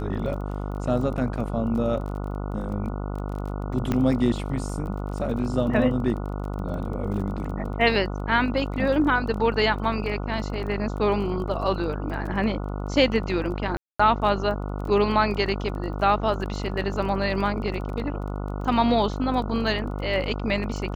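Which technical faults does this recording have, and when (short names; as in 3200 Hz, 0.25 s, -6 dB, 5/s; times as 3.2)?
buzz 50 Hz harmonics 29 -30 dBFS
crackle 23/s -34 dBFS
3.92 pop -12 dBFS
13.77–13.99 gap 0.225 s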